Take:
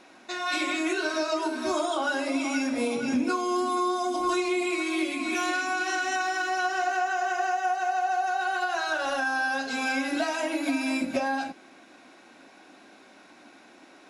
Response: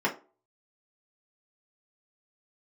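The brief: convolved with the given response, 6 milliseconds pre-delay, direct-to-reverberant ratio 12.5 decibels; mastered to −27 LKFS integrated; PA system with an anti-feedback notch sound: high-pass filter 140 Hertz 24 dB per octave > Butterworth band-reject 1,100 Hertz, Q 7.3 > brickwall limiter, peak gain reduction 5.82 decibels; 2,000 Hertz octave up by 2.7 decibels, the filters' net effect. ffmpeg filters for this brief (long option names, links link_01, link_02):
-filter_complex "[0:a]equalizer=frequency=2000:width_type=o:gain=4,asplit=2[link_01][link_02];[1:a]atrim=start_sample=2205,adelay=6[link_03];[link_02][link_03]afir=irnorm=-1:irlink=0,volume=-24dB[link_04];[link_01][link_04]amix=inputs=2:normalize=0,highpass=frequency=140:width=0.5412,highpass=frequency=140:width=1.3066,asuperstop=centerf=1100:order=8:qfactor=7.3,volume=1dB,alimiter=limit=-19dB:level=0:latency=1"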